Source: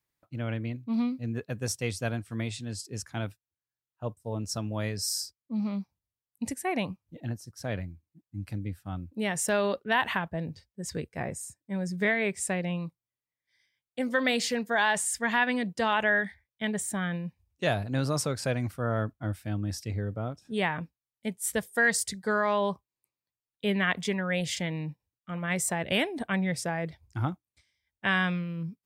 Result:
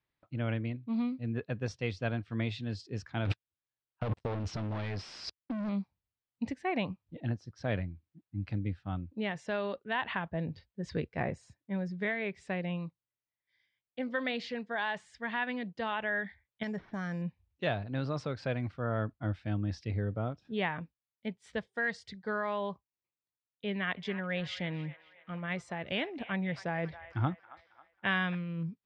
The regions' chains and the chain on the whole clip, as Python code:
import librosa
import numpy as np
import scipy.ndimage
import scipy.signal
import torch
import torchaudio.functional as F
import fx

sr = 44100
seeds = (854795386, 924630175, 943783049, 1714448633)

y = fx.chain(x, sr, fx.leveller(passes=5),
    fx.over_compress(threshold_db=-31.0, ratio=-1.0), at=(3.25, 5.69))
y = fx.chain(y, sr, fx.level_steps(step_db=9),
    fx.lowpass(hz=2400.0, slope=12),
    fx.resample_bad(factor=6, down='none', up='hold'), at=(16.63, 17.22))
y = fx.chain(y, sr, fx.high_shelf(hz=8400.0, db=6.5),
    fx.echo_wet_bandpass(ms=272, feedback_pct=46, hz=1400.0, wet_db=-14.5), at=(23.69, 28.35))
y = fx.rider(y, sr, range_db=5, speed_s=0.5)
y = scipy.signal.sosfilt(scipy.signal.butter(4, 4100.0, 'lowpass', fs=sr, output='sos'), y)
y = y * librosa.db_to_amplitude(-4.5)